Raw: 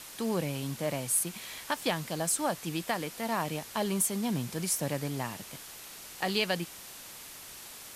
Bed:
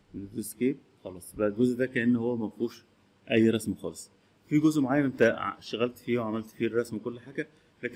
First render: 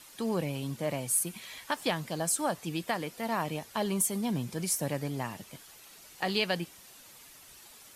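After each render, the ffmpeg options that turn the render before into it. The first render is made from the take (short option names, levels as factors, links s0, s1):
-af "afftdn=nr=9:nf=-47"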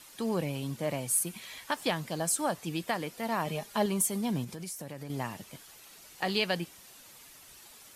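-filter_complex "[0:a]asettb=1/sr,asplit=3[s0][s1][s2];[s0]atrim=end=3.464[s3];[s1]atrim=start=3.46:end=3.86,asetpts=PTS-STARTPTS,afade=t=in:d=0.004:c=qsin,afade=t=out:st=0.396:d=0.004:c=qsin,aecho=1:1:4.9:0.62,atrim=end_sample=17640[s4];[s2]atrim=start=3.856[s5];[s3][s4]acrossfade=d=0.004:c1=hsin:c2=qsin[s6];[s6][s5]acrossfade=d=0.004:c1=qsin:c2=hsin,asettb=1/sr,asplit=3[s7][s8][s9];[s7]atrim=end=4.444[s10];[s8]atrim=start=4.44:end=5.1,asetpts=PTS-STARTPTS,afade=t=in:d=0.004:c=qsin,afade=t=out:st=0.656:d=0.004:c=qsin,acompressor=threshold=0.0141:ratio=5:attack=3.2:release=140:knee=1:detection=peak[s11];[s9]atrim=start=5.096[s12];[s10][s11]acrossfade=d=0.004:c1=hsin:c2=qsin[s13];[s13][s12]acrossfade=d=0.004:c1=qsin:c2=hsin"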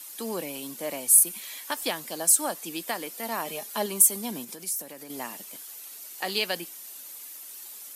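-af "highpass=f=230:w=0.5412,highpass=f=230:w=1.3066,aemphasis=mode=production:type=50fm"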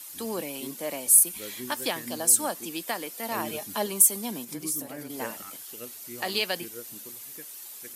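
-filter_complex "[1:a]volume=0.168[s0];[0:a][s0]amix=inputs=2:normalize=0"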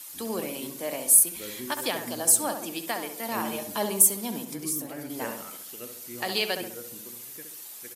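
-filter_complex "[0:a]asplit=2[s0][s1];[s1]adelay=67,lowpass=f=1700:p=1,volume=0.501,asplit=2[s2][s3];[s3]adelay=67,lowpass=f=1700:p=1,volume=0.52,asplit=2[s4][s5];[s5]adelay=67,lowpass=f=1700:p=1,volume=0.52,asplit=2[s6][s7];[s7]adelay=67,lowpass=f=1700:p=1,volume=0.52,asplit=2[s8][s9];[s9]adelay=67,lowpass=f=1700:p=1,volume=0.52,asplit=2[s10][s11];[s11]adelay=67,lowpass=f=1700:p=1,volume=0.52[s12];[s0][s2][s4][s6][s8][s10][s12]amix=inputs=7:normalize=0"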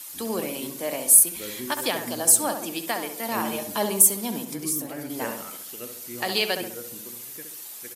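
-af "volume=1.41,alimiter=limit=0.891:level=0:latency=1"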